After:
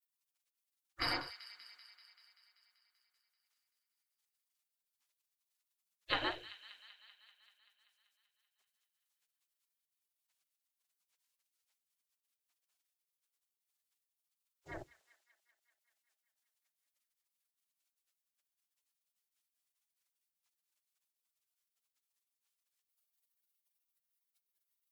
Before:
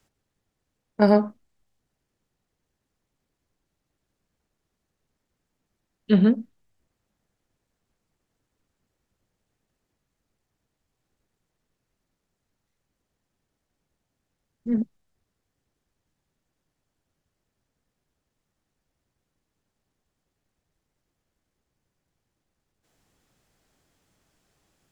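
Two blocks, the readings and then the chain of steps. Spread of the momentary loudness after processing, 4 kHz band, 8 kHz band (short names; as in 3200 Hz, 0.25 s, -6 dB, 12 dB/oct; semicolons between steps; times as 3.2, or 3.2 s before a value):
22 LU, +3.5 dB, n/a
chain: notches 60/120/180/240/300/360 Hz; spectral gate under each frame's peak -30 dB weak; thin delay 0.193 s, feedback 69%, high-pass 2200 Hz, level -12 dB; gain +4.5 dB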